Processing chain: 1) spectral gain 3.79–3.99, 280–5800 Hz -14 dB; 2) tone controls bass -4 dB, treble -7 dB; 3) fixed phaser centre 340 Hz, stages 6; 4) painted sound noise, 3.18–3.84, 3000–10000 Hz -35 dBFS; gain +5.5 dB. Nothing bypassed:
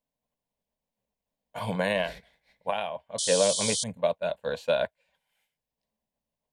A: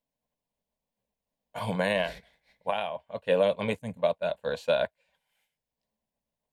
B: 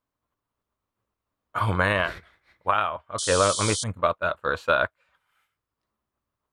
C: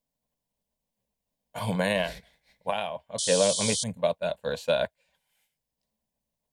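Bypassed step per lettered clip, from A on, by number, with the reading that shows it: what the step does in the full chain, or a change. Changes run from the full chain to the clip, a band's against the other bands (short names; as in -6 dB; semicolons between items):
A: 4, 4 kHz band -6.0 dB; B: 3, 1 kHz band +8.5 dB; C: 2, 125 Hz band +3.0 dB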